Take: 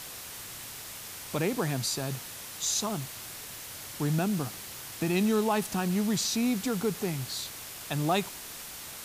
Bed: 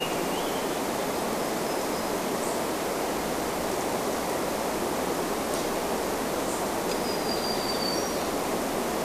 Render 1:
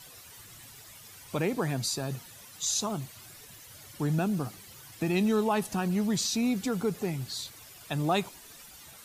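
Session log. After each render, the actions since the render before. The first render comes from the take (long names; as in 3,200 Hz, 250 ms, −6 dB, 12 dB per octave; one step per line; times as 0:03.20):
broadband denoise 12 dB, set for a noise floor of −43 dBFS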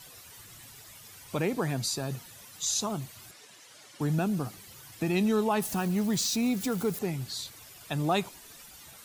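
0:03.31–0:04.01: band-pass filter 280–7,900 Hz
0:05.60–0:06.99: spike at every zero crossing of −34 dBFS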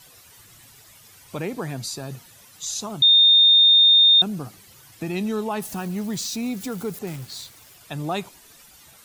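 0:03.02–0:04.22: beep over 3,650 Hz −10.5 dBFS
0:07.07–0:07.76: log-companded quantiser 4 bits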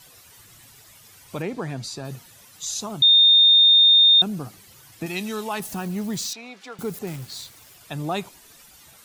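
0:01.42–0:02.05: high-frequency loss of the air 51 metres
0:05.06–0:05.60: tilt shelving filter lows −6 dB
0:06.33–0:06.79: band-pass filter 680–3,600 Hz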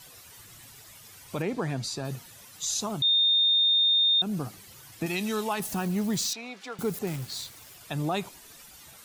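downward compressor, threshold −19 dBFS, peak gain reduction 6.5 dB
brickwall limiter −19 dBFS, peak gain reduction 7.5 dB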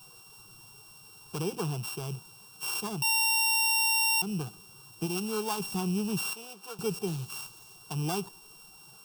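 samples sorted by size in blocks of 16 samples
phaser with its sweep stopped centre 390 Hz, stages 8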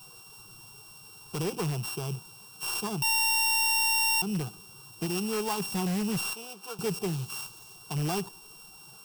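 in parallel at −9.5 dB: wrap-around overflow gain 26 dB
on the sum: floating-point word with a short mantissa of 4 bits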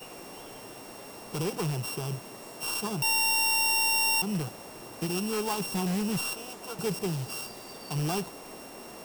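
mix in bed −17.5 dB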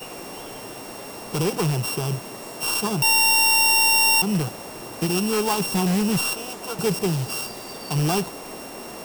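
level +8 dB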